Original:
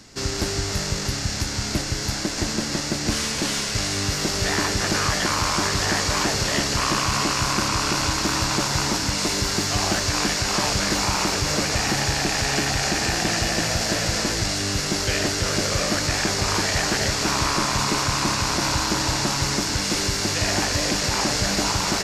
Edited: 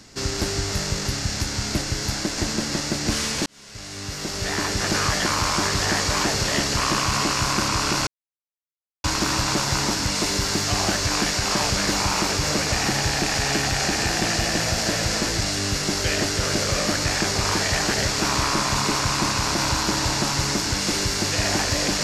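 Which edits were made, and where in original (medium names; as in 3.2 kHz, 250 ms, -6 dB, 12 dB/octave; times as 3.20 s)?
3.46–4.96 s: fade in
8.07 s: insert silence 0.97 s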